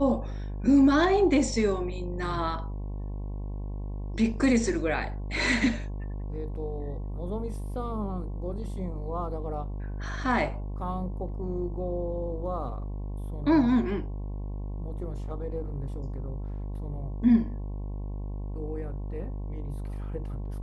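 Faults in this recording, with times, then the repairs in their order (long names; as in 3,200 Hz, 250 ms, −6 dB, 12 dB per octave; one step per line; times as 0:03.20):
mains buzz 50 Hz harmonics 22 −34 dBFS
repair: hum removal 50 Hz, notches 22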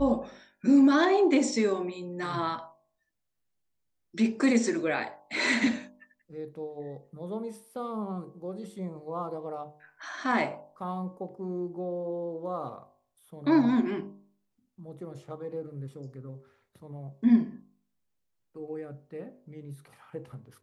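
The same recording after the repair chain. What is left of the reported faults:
none of them is left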